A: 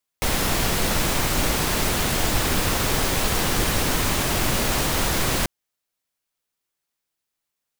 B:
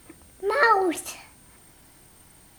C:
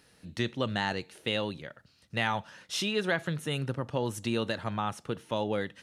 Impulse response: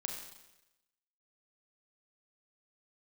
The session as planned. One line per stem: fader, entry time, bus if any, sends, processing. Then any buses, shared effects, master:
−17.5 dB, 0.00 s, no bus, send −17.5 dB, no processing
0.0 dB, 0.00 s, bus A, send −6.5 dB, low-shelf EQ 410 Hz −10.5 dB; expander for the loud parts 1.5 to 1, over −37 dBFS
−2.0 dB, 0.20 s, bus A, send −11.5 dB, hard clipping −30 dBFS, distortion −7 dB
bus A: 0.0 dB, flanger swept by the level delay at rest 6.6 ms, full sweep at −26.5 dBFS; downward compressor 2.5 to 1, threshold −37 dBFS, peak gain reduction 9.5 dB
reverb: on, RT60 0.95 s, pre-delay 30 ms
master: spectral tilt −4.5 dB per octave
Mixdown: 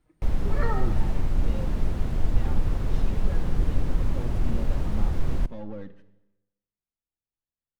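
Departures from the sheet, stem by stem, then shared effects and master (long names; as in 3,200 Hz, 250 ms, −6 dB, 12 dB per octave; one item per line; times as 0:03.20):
stem B 0.0 dB → −8.0 dB
stem C −2.0 dB → −10.0 dB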